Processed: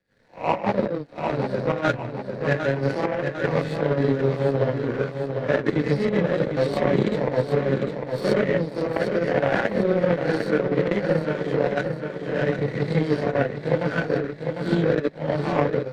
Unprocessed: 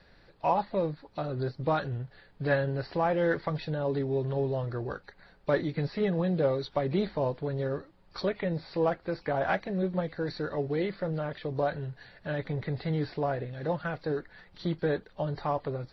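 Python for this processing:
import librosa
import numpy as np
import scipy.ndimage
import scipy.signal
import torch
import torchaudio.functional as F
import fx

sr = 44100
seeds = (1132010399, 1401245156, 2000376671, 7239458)

y = fx.spec_swells(x, sr, rise_s=0.39)
y = fx.high_shelf(y, sr, hz=2600.0, db=9.5)
y = fx.rev_gated(y, sr, seeds[0], gate_ms=140, shape='rising', drr_db=-7.5)
y = fx.power_curve(y, sr, exponent=2.0)
y = fx.graphic_eq_10(y, sr, hz=(125, 250, 500, 2000, 4000), db=(12, 9, 9, 7, -3))
y = fx.over_compress(y, sr, threshold_db=-21.0, ratio=-0.5)
y = fx.echo_feedback(y, sr, ms=751, feedback_pct=47, wet_db=-8.5)
y = fx.band_squash(y, sr, depth_pct=40)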